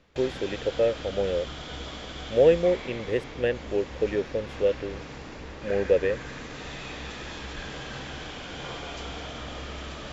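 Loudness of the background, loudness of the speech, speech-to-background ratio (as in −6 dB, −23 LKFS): −38.0 LKFS, −26.5 LKFS, 11.5 dB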